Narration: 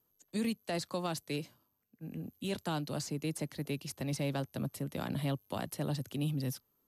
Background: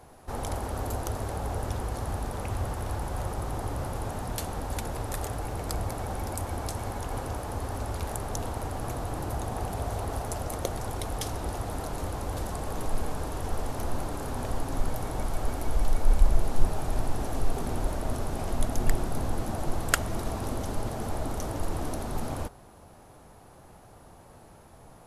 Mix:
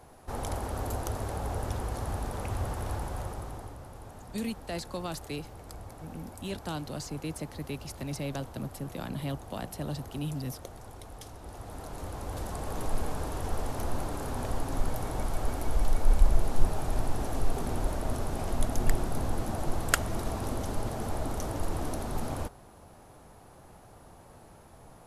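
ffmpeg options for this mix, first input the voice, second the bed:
-filter_complex "[0:a]adelay=4000,volume=0.944[s0];[1:a]volume=3.35,afade=t=out:st=2.93:d=0.85:silence=0.266073,afade=t=in:st=11.4:d=1.49:silence=0.251189[s1];[s0][s1]amix=inputs=2:normalize=0"

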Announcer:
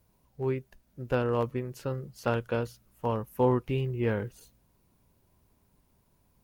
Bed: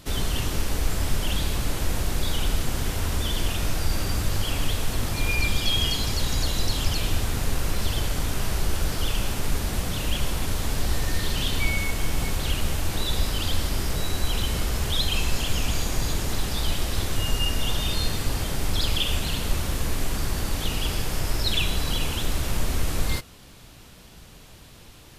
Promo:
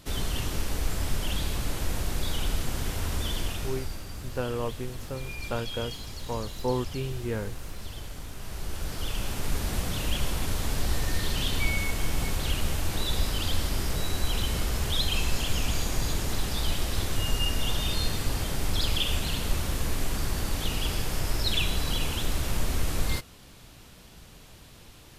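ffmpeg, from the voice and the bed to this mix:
-filter_complex "[0:a]adelay=3250,volume=0.668[s0];[1:a]volume=2.24,afade=t=out:st=3.3:d=0.72:silence=0.334965,afade=t=in:st=8.38:d=1.34:silence=0.281838[s1];[s0][s1]amix=inputs=2:normalize=0"

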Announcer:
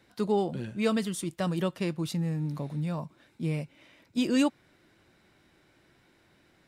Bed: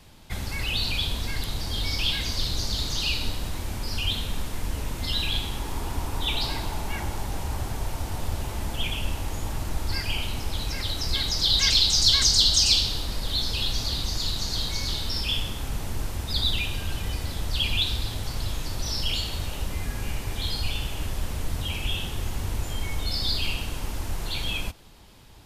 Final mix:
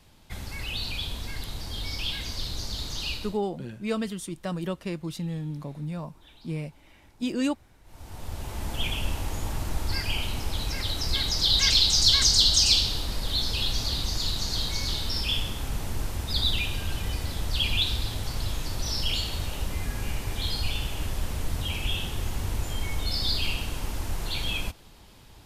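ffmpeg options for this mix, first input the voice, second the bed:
-filter_complex "[0:a]adelay=3050,volume=0.794[s0];[1:a]volume=12.6,afade=t=out:st=3.11:d=0.3:silence=0.0749894,afade=t=in:st=7.84:d=1:silence=0.0421697[s1];[s0][s1]amix=inputs=2:normalize=0"

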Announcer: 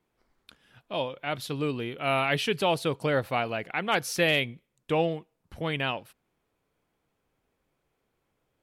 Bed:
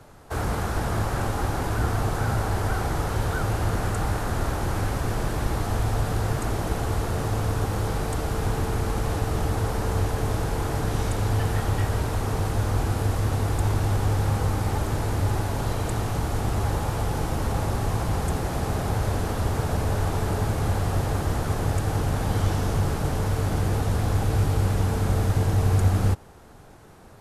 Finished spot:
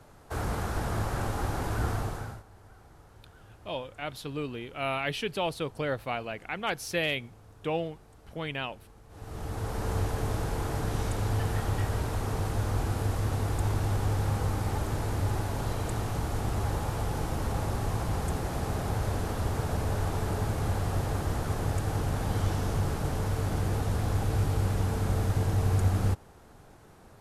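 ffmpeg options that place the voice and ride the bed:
-filter_complex "[0:a]adelay=2750,volume=0.562[s0];[1:a]volume=8.41,afade=t=out:st=1.9:d=0.53:silence=0.0668344,afade=t=in:st=9.09:d=0.82:silence=0.0668344[s1];[s0][s1]amix=inputs=2:normalize=0"

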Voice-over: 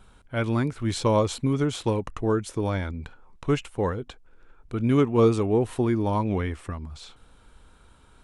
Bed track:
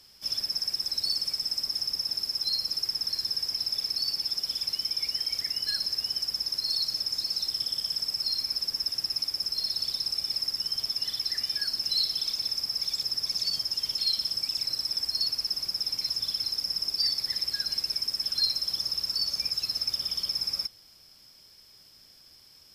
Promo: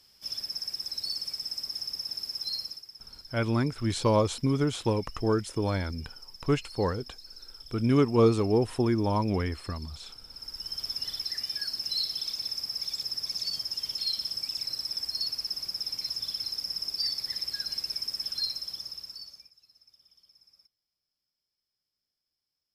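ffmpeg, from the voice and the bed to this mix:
-filter_complex "[0:a]adelay=3000,volume=0.794[s0];[1:a]volume=2.99,afade=t=out:st=2.59:d=0.24:silence=0.223872,afade=t=in:st=10.31:d=0.58:silence=0.188365,afade=t=out:st=18.21:d=1.3:silence=0.0421697[s1];[s0][s1]amix=inputs=2:normalize=0"

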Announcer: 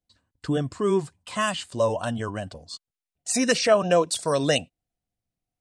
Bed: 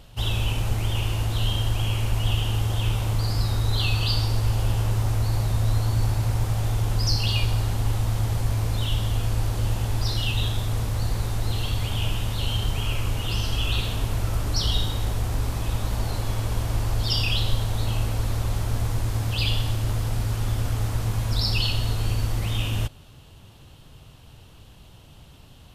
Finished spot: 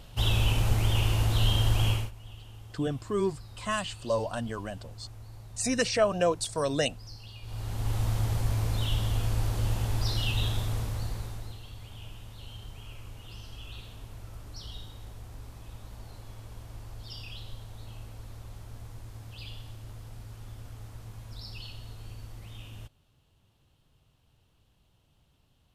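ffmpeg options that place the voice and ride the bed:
-filter_complex "[0:a]adelay=2300,volume=0.531[s0];[1:a]volume=8.41,afade=t=out:st=1.89:d=0.22:silence=0.0749894,afade=t=in:st=7.42:d=0.61:silence=0.112202,afade=t=out:st=10.56:d=1.03:silence=0.177828[s1];[s0][s1]amix=inputs=2:normalize=0"

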